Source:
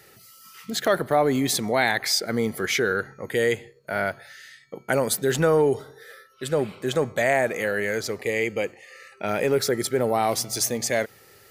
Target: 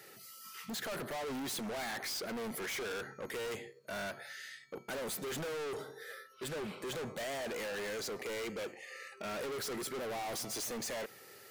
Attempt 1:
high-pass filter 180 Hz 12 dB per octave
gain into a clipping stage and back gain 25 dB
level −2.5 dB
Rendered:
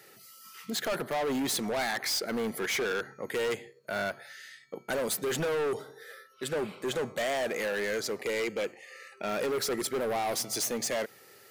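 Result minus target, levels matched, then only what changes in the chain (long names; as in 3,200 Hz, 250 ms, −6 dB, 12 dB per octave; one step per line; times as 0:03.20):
gain into a clipping stage and back: distortion −4 dB
change: gain into a clipping stage and back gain 35.5 dB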